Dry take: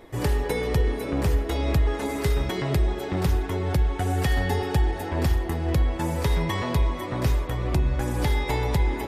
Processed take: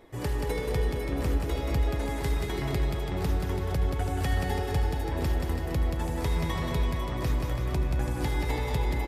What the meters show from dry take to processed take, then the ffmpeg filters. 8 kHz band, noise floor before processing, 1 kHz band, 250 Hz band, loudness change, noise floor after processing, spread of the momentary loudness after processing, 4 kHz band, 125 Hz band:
−4.5 dB, −32 dBFS, −4.5 dB, −4.5 dB, −4.5 dB, −32 dBFS, 2 LU, −4.5 dB, −4.0 dB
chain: -af "aecho=1:1:180|333|463|573.6|667.6:0.631|0.398|0.251|0.158|0.1,volume=-6.5dB"

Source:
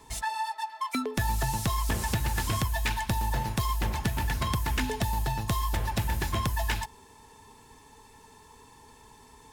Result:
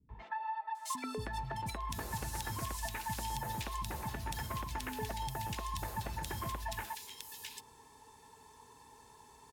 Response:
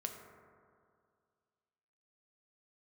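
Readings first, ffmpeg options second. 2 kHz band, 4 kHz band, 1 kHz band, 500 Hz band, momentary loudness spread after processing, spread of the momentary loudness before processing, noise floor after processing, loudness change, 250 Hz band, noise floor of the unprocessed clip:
−10.0 dB, −9.0 dB, −7.0 dB, −8.5 dB, 19 LU, 3 LU, −60 dBFS, −10.0 dB, −11.5 dB, −55 dBFS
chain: -filter_complex "[0:a]highpass=frequency=98:poles=1,equalizer=frequency=920:width_type=o:width=0.31:gain=2,acompressor=threshold=-30dB:ratio=6,acrossover=split=230|2400[link_01][link_02][link_03];[link_02]adelay=90[link_04];[link_03]adelay=750[link_05];[link_01][link_04][link_05]amix=inputs=3:normalize=0,volume=-4.5dB"

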